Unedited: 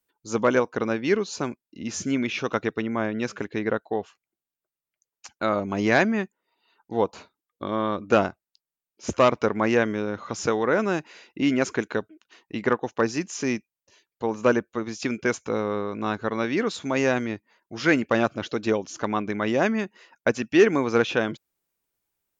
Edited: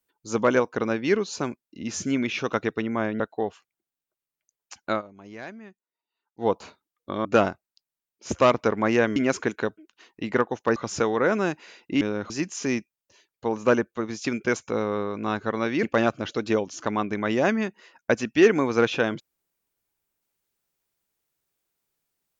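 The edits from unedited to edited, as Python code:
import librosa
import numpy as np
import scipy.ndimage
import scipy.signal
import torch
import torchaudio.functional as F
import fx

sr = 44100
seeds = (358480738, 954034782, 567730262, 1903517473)

y = fx.edit(x, sr, fx.cut(start_s=3.2, length_s=0.53),
    fx.fade_down_up(start_s=5.43, length_s=1.59, db=-19.5, fade_s=0.12, curve='qsin'),
    fx.cut(start_s=7.78, length_s=0.25),
    fx.swap(start_s=9.94, length_s=0.29, other_s=11.48, other_length_s=1.6),
    fx.cut(start_s=16.61, length_s=1.39), tone=tone)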